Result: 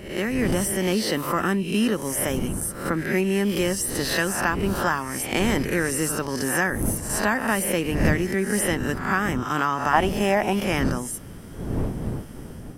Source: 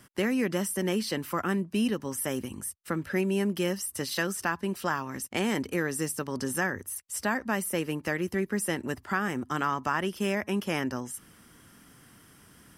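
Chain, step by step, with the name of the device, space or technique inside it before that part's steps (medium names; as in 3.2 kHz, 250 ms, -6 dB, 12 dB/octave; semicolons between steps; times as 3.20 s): reverse spectral sustain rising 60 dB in 0.58 s; 9.93–10.53 s: peaking EQ 750 Hz +15 dB 0.62 oct; smartphone video outdoors (wind noise 230 Hz -36 dBFS; level rider gain up to 4.5 dB; AAC 96 kbps 48 kHz)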